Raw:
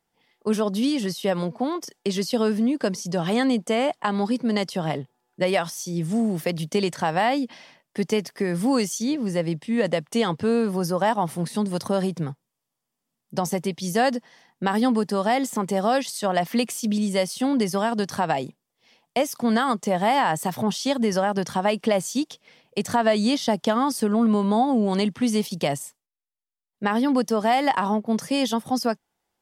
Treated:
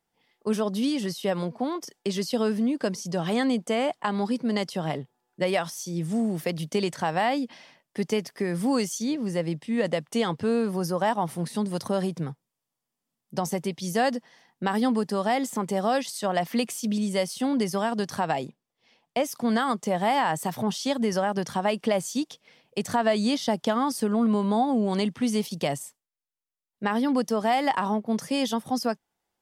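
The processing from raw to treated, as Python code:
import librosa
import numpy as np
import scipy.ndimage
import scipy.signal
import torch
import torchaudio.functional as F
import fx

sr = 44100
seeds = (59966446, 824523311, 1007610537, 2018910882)

y = fx.high_shelf(x, sr, hz=8500.0, db=-11.0, at=(18.46, 19.24))
y = y * 10.0 ** (-3.0 / 20.0)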